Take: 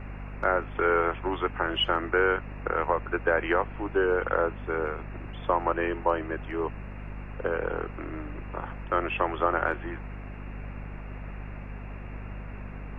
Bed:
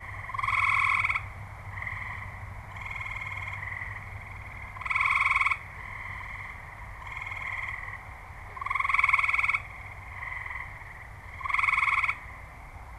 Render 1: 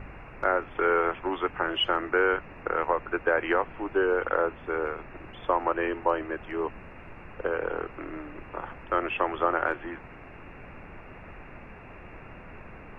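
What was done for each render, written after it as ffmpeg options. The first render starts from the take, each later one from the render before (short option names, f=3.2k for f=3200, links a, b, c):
-af "bandreject=f=50:t=h:w=4,bandreject=f=100:t=h:w=4,bandreject=f=150:t=h:w=4,bandreject=f=200:t=h:w=4,bandreject=f=250:t=h:w=4"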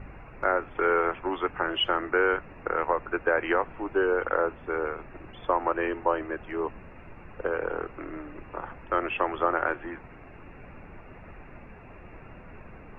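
-af "afftdn=nr=6:nf=-46"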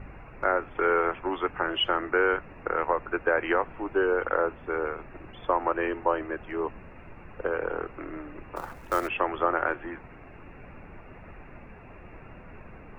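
-filter_complex "[0:a]asettb=1/sr,asplit=3[a][b][c];[a]atrim=end=8.564[d];[b]atrim=start=8.56:end=9.08,asetpts=PTS-STARTPTS,afade=t=in:d=0.004:c=qsin,afade=t=out:st=0.516:d=0.004:c=qsin,acrusher=bits=4:mode=log:mix=0:aa=0.000001[e];[c]atrim=start=9.076[f];[d][e]acrossfade=d=0.004:c1=hsin:c2=qsin[g];[g][f]acrossfade=d=0.004:c1=qsin:c2=hsin"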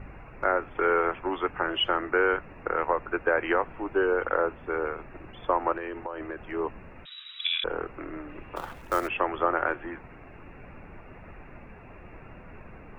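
-filter_complex "[0:a]asettb=1/sr,asplit=3[a][b][c];[a]atrim=end=5.774[d];[b]atrim=start=5.77:end=6.39,asetpts=PTS-STARTPTS,afade=t=in:d=0.004:c=qsin,afade=t=out:st=0.616:d=0.004:c=qsin,acompressor=threshold=-30dB:ratio=12:attack=3.2:release=140:knee=1:detection=peak[e];[c]atrim=start=6.386[f];[d][e]acrossfade=d=0.004:c1=hsin:c2=qsin[g];[g][f]acrossfade=d=0.004:c1=qsin:c2=hsin,asettb=1/sr,asplit=3[h][i][j];[h]atrim=end=7.054[k];[i]atrim=start=7.05:end=7.64,asetpts=PTS-STARTPTS,afade=t=in:d=0.004:c=qsin,afade=t=out:st=0.586:d=0.004:c=qsin,lowpass=f=3.3k:t=q:w=0.5098,lowpass=f=3.3k:t=q:w=0.6013,lowpass=f=3.3k:t=q:w=0.9,lowpass=f=3.3k:t=q:w=2.563,afreqshift=-3900[l];[j]atrim=start=7.636[m];[k][l]acrossfade=d=0.004:c1=hsin:c2=qsin[n];[n][m]acrossfade=d=0.004:c1=qsin:c2=hsin,asettb=1/sr,asplit=3[o][p][q];[o]atrim=end=8.294[r];[p]atrim=start=8.29:end=8.82,asetpts=PTS-STARTPTS,afade=t=in:d=0.004:c=qsin,afade=t=out:st=0.526:d=0.004:c=qsin,equalizer=f=3.3k:t=o:w=0.51:g=10.5[s];[q]atrim=start=8.816[t];[r][s]acrossfade=d=0.004:c1=hsin:c2=qsin[u];[u][t]acrossfade=d=0.004:c1=qsin:c2=hsin"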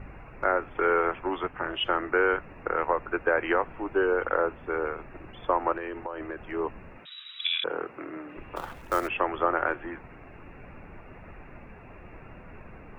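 -filter_complex "[0:a]asettb=1/sr,asplit=3[a][b][c];[a]atrim=end=1.434[d];[b]atrim=start=1.43:end=1.86,asetpts=PTS-STARTPTS,afade=t=in:d=0.004:c=qsin,afade=t=out:st=0.426:d=0.004:c=qsin,tremolo=f=280:d=0.71[e];[c]atrim=start=1.856[f];[d][e]acrossfade=d=0.004:c1=hsin:c2=qsin[g];[g][f]acrossfade=d=0.004:c1=qsin:c2=hsin,asettb=1/sr,asplit=3[h][i][j];[h]atrim=end=6.984[k];[i]atrim=start=6.98:end=8.37,asetpts=PTS-STARTPTS,afade=t=in:d=0.004:c=qsin,afade=t=out:st=1.386:d=0.004:c=qsin,highpass=170[l];[j]atrim=start=8.366[m];[k][l]acrossfade=d=0.004:c1=hsin:c2=qsin[n];[n][m]acrossfade=d=0.004:c1=qsin:c2=hsin"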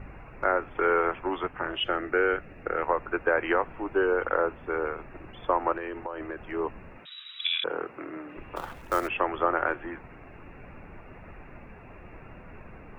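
-filter_complex "[0:a]asettb=1/sr,asplit=3[a][b][c];[a]atrim=end=1.804[d];[b]atrim=start=1.8:end=2.82,asetpts=PTS-STARTPTS,afade=t=in:d=0.004:c=qsin,afade=t=out:st=1.016:d=0.004:c=qsin,equalizer=f=1k:t=o:w=0.39:g=-11.5[e];[c]atrim=start=2.816[f];[d][e]acrossfade=d=0.004:c1=hsin:c2=qsin[g];[g][f]acrossfade=d=0.004:c1=qsin:c2=hsin"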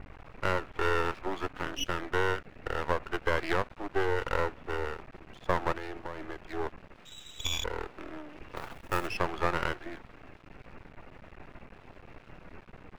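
-af "aeval=exprs='max(val(0),0)':c=same"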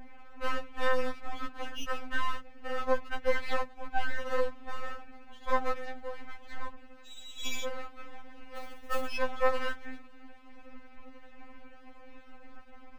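-af "afftfilt=real='re*3.46*eq(mod(b,12),0)':imag='im*3.46*eq(mod(b,12),0)':win_size=2048:overlap=0.75"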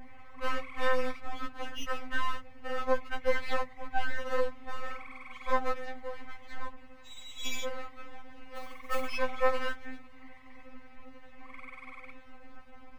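-filter_complex "[1:a]volume=-24dB[a];[0:a][a]amix=inputs=2:normalize=0"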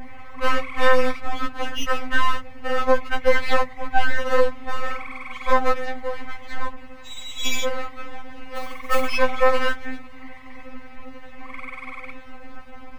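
-af "volume=11.5dB,alimiter=limit=-3dB:level=0:latency=1"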